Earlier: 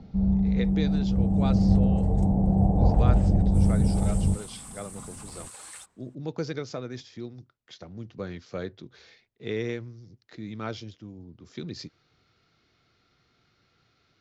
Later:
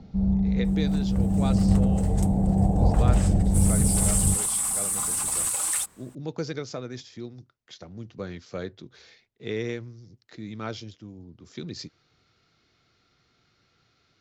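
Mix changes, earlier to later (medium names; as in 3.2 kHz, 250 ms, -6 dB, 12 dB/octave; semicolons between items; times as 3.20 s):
second sound +12.0 dB; master: remove distance through air 57 m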